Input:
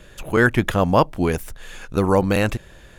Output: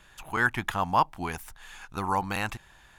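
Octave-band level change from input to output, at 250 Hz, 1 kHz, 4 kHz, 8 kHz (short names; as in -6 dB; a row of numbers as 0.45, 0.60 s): -15.0, -3.0, -6.5, -7.0 dB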